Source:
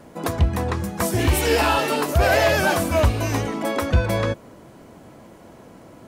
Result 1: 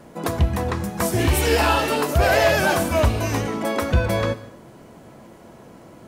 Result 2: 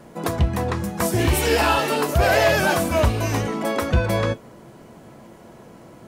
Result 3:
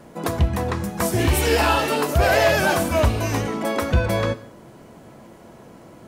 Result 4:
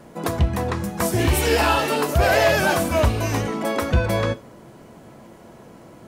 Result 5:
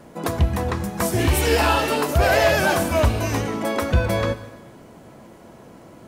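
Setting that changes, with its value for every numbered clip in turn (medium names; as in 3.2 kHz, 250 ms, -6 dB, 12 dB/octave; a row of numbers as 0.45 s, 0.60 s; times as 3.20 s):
gated-style reverb, gate: 310 ms, 80 ms, 210 ms, 130 ms, 500 ms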